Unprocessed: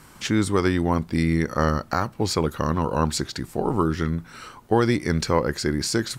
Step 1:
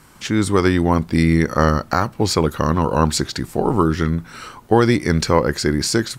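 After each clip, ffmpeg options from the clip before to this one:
ffmpeg -i in.wav -af "dynaudnorm=framelen=250:gausssize=3:maxgain=8dB" out.wav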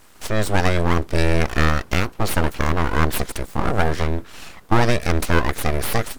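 ffmpeg -i in.wav -af "aeval=exprs='abs(val(0))':channel_layout=same" out.wav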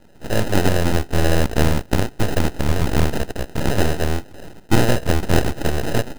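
ffmpeg -i in.wav -af "acrusher=samples=39:mix=1:aa=0.000001,volume=1dB" out.wav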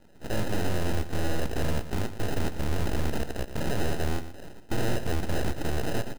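ffmpeg -i in.wav -af "volume=13dB,asoftclip=hard,volume=-13dB,aecho=1:1:118:0.251,volume=-6.5dB" out.wav

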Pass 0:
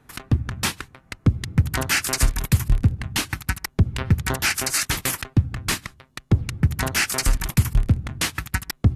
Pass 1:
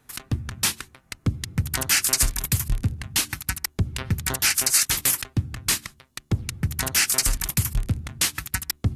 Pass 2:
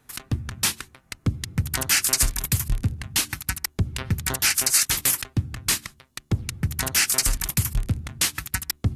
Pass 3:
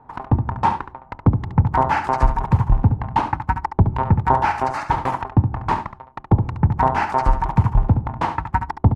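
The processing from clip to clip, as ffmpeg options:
ffmpeg -i in.wav -af "highshelf=frequency=3400:gain=12,bandreject=frequency=73.96:width_type=h:width=4,bandreject=frequency=147.92:width_type=h:width=4,bandreject=frequency=221.88:width_type=h:width=4,bandreject=frequency=295.84:width_type=h:width=4,bandreject=frequency=369.8:width_type=h:width=4,volume=-5.5dB" out.wav
ffmpeg -i in.wav -af anull out.wav
ffmpeg -i in.wav -af "lowpass=frequency=900:width_type=q:width=8.2,aecho=1:1:70:0.355,volume=8dB" out.wav

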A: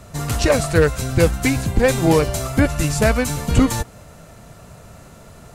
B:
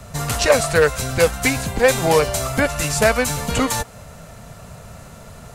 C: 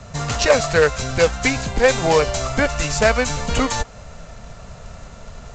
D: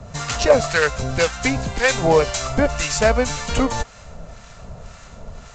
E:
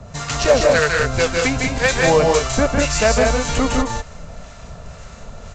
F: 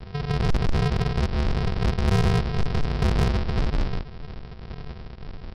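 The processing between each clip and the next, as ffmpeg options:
ffmpeg -i in.wav -filter_complex "[0:a]equalizer=frequency=330:width_type=o:width=0.38:gain=-10,acrossover=split=310|1700|2800[link_01][link_02][link_03][link_04];[link_01]acompressor=threshold=-28dB:ratio=6[link_05];[link_05][link_02][link_03][link_04]amix=inputs=4:normalize=0,volume=3.5dB" out.wav
ffmpeg -i in.wav -af "asubboost=boost=4:cutoff=54,aresample=16000,acrusher=bits=5:mode=log:mix=0:aa=0.000001,aresample=44100" out.wav
ffmpeg -i in.wav -filter_complex "[0:a]acrossover=split=1000[link_01][link_02];[link_01]aeval=exprs='val(0)*(1-0.7/2+0.7/2*cos(2*PI*1.9*n/s))':channel_layout=same[link_03];[link_02]aeval=exprs='val(0)*(1-0.7/2-0.7/2*cos(2*PI*1.9*n/s))':channel_layout=same[link_04];[link_03][link_04]amix=inputs=2:normalize=0,volume=2.5dB" out.wav
ffmpeg -i in.wav -af "volume=5.5dB,asoftclip=hard,volume=-5.5dB,aecho=1:1:154.5|189.5:0.631|0.631" out.wav
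ffmpeg -i in.wav -af "aresample=11025,acrusher=samples=38:mix=1:aa=0.000001,aresample=44100,asoftclip=type=tanh:threshold=-15dB,volume=-1dB" out.wav

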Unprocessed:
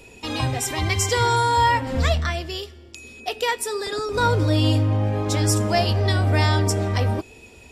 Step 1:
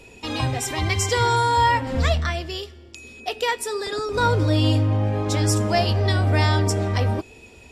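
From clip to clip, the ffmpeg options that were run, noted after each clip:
ffmpeg -i in.wav -af "highshelf=frequency=11000:gain=-7" out.wav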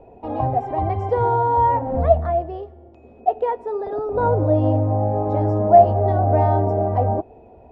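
ffmpeg -i in.wav -af "lowpass=frequency=720:width_type=q:width=4.9,volume=-1dB" out.wav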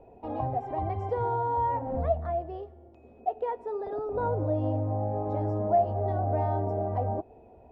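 ffmpeg -i in.wav -af "acompressor=threshold=-23dB:ratio=1.5,volume=-7dB" out.wav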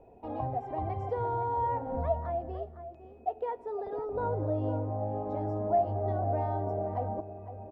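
ffmpeg -i in.wav -filter_complex "[0:a]asplit=2[link_01][link_02];[link_02]adelay=507.3,volume=-11dB,highshelf=frequency=4000:gain=-11.4[link_03];[link_01][link_03]amix=inputs=2:normalize=0,volume=-3dB" out.wav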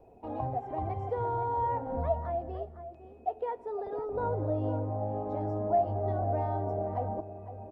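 ffmpeg -i in.wav -ar 48000 -c:a libopus -b:a 32k out.opus

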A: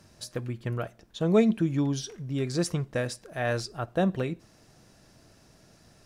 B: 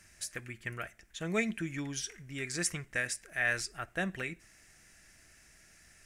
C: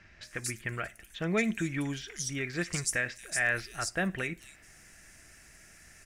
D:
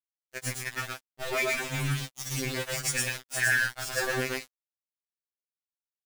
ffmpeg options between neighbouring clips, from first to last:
ffmpeg -i in.wav -af "equalizer=frequency=125:width_type=o:width=1:gain=-12,equalizer=frequency=250:width_type=o:width=1:gain=-8,equalizer=frequency=500:width_type=o:width=1:gain=-10,equalizer=frequency=1000:width_type=o:width=1:gain=-10,equalizer=frequency=2000:width_type=o:width=1:gain=12,equalizer=frequency=4000:width_type=o:width=1:gain=-9,equalizer=frequency=8000:width_type=o:width=1:gain=7" out.wav
ffmpeg -i in.wav -filter_complex "[0:a]asplit=2[link_01][link_02];[link_02]alimiter=level_in=5.5dB:limit=-24dB:level=0:latency=1:release=63,volume=-5.5dB,volume=-1dB[link_03];[link_01][link_03]amix=inputs=2:normalize=0,acrossover=split=4100[link_04][link_05];[link_05]adelay=230[link_06];[link_04][link_06]amix=inputs=2:normalize=0" out.wav
ffmpeg -i in.wav -af "aecho=1:1:113.7|163.3:0.891|0.251,aeval=exprs='val(0)*gte(abs(val(0)),0.0335)':channel_layout=same,afftfilt=real='re*2.45*eq(mod(b,6),0)':imag='im*2.45*eq(mod(b,6),0)':win_size=2048:overlap=0.75,volume=3.5dB" out.wav

